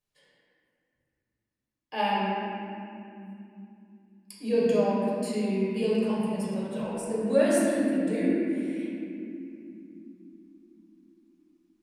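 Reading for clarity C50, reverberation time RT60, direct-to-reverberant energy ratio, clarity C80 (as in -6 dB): -3.5 dB, not exponential, -9.0 dB, -1.5 dB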